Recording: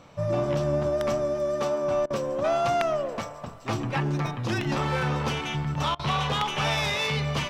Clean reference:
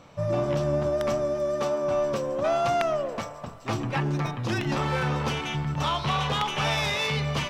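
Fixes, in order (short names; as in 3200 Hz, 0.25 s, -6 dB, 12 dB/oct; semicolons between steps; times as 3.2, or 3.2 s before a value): interpolate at 2.06/5.95, 42 ms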